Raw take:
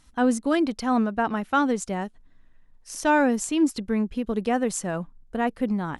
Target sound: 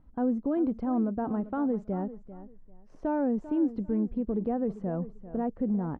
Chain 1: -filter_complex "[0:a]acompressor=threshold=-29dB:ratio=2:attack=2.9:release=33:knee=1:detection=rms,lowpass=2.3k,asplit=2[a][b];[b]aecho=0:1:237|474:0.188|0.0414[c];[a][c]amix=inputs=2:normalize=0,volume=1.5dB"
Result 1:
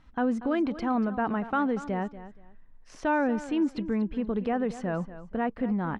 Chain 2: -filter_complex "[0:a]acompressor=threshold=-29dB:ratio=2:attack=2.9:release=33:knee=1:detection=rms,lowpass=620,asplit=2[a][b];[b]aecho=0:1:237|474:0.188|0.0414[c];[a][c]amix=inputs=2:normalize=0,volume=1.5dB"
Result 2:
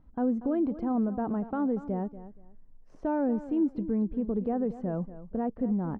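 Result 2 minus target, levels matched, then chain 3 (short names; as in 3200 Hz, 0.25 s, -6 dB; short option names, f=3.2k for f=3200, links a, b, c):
echo 0.157 s early
-filter_complex "[0:a]acompressor=threshold=-29dB:ratio=2:attack=2.9:release=33:knee=1:detection=rms,lowpass=620,asplit=2[a][b];[b]aecho=0:1:394|788:0.188|0.0414[c];[a][c]amix=inputs=2:normalize=0,volume=1.5dB"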